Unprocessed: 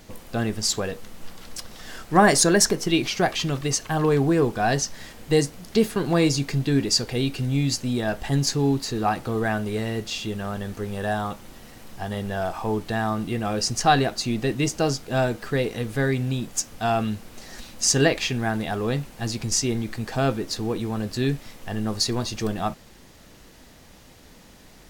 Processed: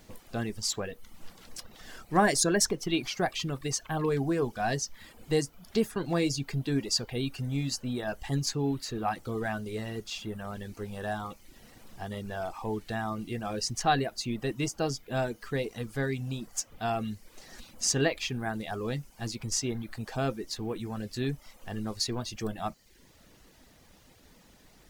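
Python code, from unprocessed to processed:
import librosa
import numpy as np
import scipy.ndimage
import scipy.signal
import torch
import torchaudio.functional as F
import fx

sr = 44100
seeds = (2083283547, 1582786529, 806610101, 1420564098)

y = fx.quant_dither(x, sr, seeds[0], bits=10, dither='none')
y = fx.dereverb_blind(y, sr, rt60_s=0.6)
y = y * 10.0 ** (-7.0 / 20.0)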